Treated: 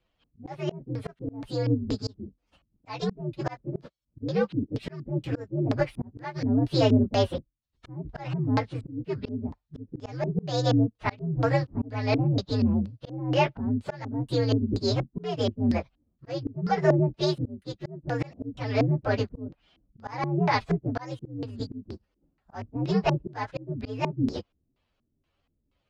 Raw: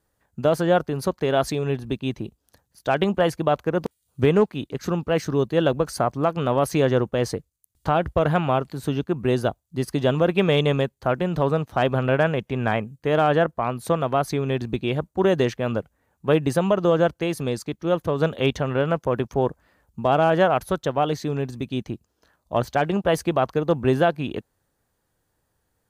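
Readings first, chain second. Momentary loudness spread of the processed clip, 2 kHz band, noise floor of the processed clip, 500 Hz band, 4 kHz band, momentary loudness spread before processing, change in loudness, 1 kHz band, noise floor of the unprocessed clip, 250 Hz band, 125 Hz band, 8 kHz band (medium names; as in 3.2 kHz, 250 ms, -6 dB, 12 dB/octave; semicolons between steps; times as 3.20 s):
14 LU, -8.0 dB, -77 dBFS, -9.0 dB, -4.5 dB, 9 LU, -5.5 dB, -8.5 dB, -74 dBFS, -3.0 dB, -2.0 dB, -10.5 dB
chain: frequency axis rescaled in octaves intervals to 126%; LFO low-pass square 2.1 Hz 270–4200 Hz; slow attack 405 ms; trim +1 dB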